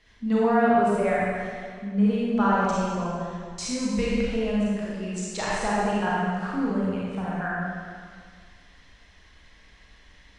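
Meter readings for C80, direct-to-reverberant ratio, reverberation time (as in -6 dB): -1.5 dB, -7.0 dB, 2.0 s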